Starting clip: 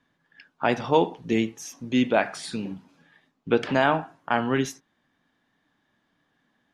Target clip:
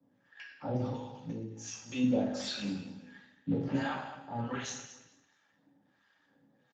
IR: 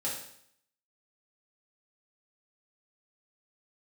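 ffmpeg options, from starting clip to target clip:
-filter_complex "[0:a]asettb=1/sr,asplit=3[a][b][c];[a]atrim=end=2.234[d];[b]atrim=start=2.23:end=3.65,asetpts=PTS-STARTPTS,afade=t=in:d=0.004:c=qsin,afade=t=out:st=1.416:d=0.004:c=qsin,equalizer=f=1.1k:w=5.3:g=-11.5[e];[c]atrim=start=3.646[f];[d][e]acrossfade=d=0.004:c1=hsin:c2=qsin[g];[g][f]acrossfade=d=0.004:c1=qsin:c2=hsin,acrossover=split=170|4300[h][i][j];[h]acompressor=threshold=-35dB:ratio=4[k];[i]acompressor=threshold=-33dB:ratio=4[l];[j]acompressor=threshold=-45dB:ratio=4[m];[k][l][m]amix=inputs=3:normalize=0,alimiter=level_in=0.5dB:limit=-24dB:level=0:latency=1:release=11,volume=-0.5dB,asettb=1/sr,asplit=3[n][o][p];[n]atrim=end=0.844[q];[o]atrim=start=0.84:end=1.69,asetpts=PTS-STARTPTS,afade=t=in:d=0.004:c=qsin,afade=t=out:st=0.846:d=0.004:c=qsin,acompressor=threshold=-38dB:ratio=16[r];[p]atrim=start=1.686[s];[q][r]acrossfade=d=0.004:c1=hsin:c2=qsin[t];[t][s]acrossfade=d=0.004:c1=qsin:c2=hsin,acrossover=split=800[u][v];[u]aeval=exprs='val(0)*(1-1/2+1/2*cos(2*PI*1.4*n/s))':c=same[w];[v]aeval=exprs='val(0)*(1-1/2-1/2*cos(2*PI*1.4*n/s))':c=same[x];[w][x]amix=inputs=2:normalize=0,aecho=1:1:215|430|645:0.224|0.056|0.014[y];[1:a]atrim=start_sample=2205,afade=t=out:st=0.37:d=0.01,atrim=end_sample=16758[z];[y][z]afir=irnorm=-1:irlink=0,volume=1.5dB" -ar 16000 -c:a libspeex -b:a 13k

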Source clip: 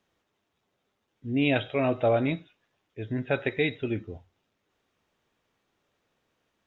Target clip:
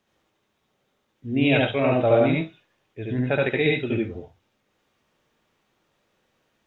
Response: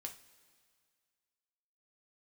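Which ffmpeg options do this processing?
-filter_complex "[0:a]asplit=2[a][b];[1:a]atrim=start_sample=2205,atrim=end_sample=3528,adelay=72[c];[b][c]afir=irnorm=-1:irlink=0,volume=5dB[d];[a][d]amix=inputs=2:normalize=0,volume=2dB"

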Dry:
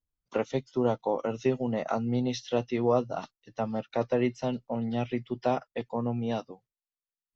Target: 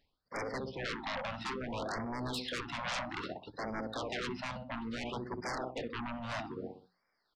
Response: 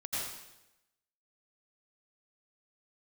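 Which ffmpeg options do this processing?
-filter_complex "[0:a]lowshelf=f=130:g=-11.5,asplit=2[a][b];[b]adelay=63,lowpass=f=1.2k:p=1,volume=-9.5dB,asplit=2[c][d];[d]adelay=63,lowpass=f=1.2k:p=1,volume=0.43,asplit=2[e][f];[f]adelay=63,lowpass=f=1.2k:p=1,volume=0.43,asplit=2[g][h];[h]adelay=63,lowpass=f=1.2k:p=1,volume=0.43,asplit=2[i][j];[j]adelay=63,lowpass=f=1.2k:p=1,volume=0.43[k];[c][e][g][i][k]amix=inputs=5:normalize=0[l];[a][l]amix=inputs=2:normalize=0,aresample=11025,aresample=44100,aeval=exprs='0.237*sin(PI/2*8.91*val(0)/0.237)':c=same,areverse,acompressor=threshold=-38dB:ratio=8,areverse,asplit=2[m][n];[n]asetrate=22050,aresample=44100,atempo=2,volume=-5dB[o];[m][o]amix=inputs=2:normalize=0,lowshelf=f=390:g=-5.5,bandreject=f=60:t=h:w=6,bandreject=f=120:t=h:w=6,bandreject=f=180:t=h:w=6,afftfilt=real='re*(1-between(b*sr/1024,350*pow(3400/350,0.5+0.5*sin(2*PI*0.6*pts/sr))/1.41,350*pow(3400/350,0.5+0.5*sin(2*PI*0.6*pts/sr))*1.41))':imag='im*(1-between(b*sr/1024,350*pow(3400/350,0.5+0.5*sin(2*PI*0.6*pts/sr))/1.41,350*pow(3400/350,0.5+0.5*sin(2*PI*0.6*pts/sr))*1.41))':win_size=1024:overlap=0.75,volume=1.5dB"

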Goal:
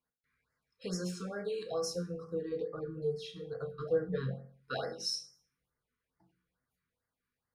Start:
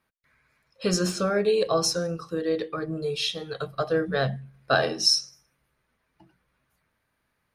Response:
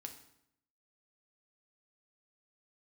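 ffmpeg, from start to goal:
-filter_complex "[0:a]asettb=1/sr,asplit=3[a][b][c];[a]atrim=end=1.944[d];[b]atrim=start=1.94:end=4.34,asetpts=PTS-STARTPTS,afade=t=in:d=0.004:c=qsin,afade=t=out:st=2.396:d=0.004:c=qsin,tiltshelf=f=1.2k:g=7[e];[c]atrim=start=4.336[f];[d][e]acrossfade=d=0.004:c1=hsin:c2=qsin[g];[g][f]acrossfade=d=0.004:c1=qsin:c2=hsin[h];[1:a]atrim=start_sample=2205,asetrate=74970,aresample=44100[i];[h][i]afir=irnorm=-1:irlink=0,afftfilt=real='re*(1-between(b*sr/1024,620*pow(3200/620,0.5+0.5*sin(2*PI*2.3*pts/sr))/1.41,620*pow(3200/620,0.5+0.5*sin(2*PI*2.3*pts/sr))*1.41))':imag='im*(1-between(b*sr/1024,620*pow(3200/620,0.5+0.5*sin(2*PI*2.3*pts/sr))/1.41,620*pow(3200/620,0.5+0.5*sin(2*PI*2.3*pts/sr))*1.41))':win_size=1024:overlap=0.75,volume=-5dB"

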